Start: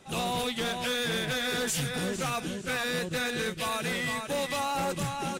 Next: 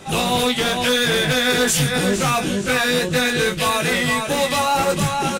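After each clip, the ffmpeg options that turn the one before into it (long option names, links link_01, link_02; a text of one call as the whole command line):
ffmpeg -i in.wav -filter_complex "[0:a]asplit=2[link_01][link_02];[link_02]alimiter=level_in=9.5dB:limit=-24dB:level=0:latency=1,volume=-9.5dB,volume=2.5dB[link_03];[link_01][link_03]amix=inputs=2:normalize=0,asplit=2[link_04][link_05];[link_05]adelay=20,volume=-4.5dB[link_06];[link_04][link_06]amix=inputs=2:normalize=0,volume=7dB" out.wav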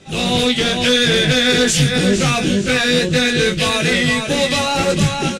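ffmpeg -i in.wav -af "lowpass=6700,equalizer=frequency=980:width=1.1:gain=-10.5,dynaudnorm=framelen=120:gausssize=3:maxgain=11.5dB,volume=-3dB" out.wav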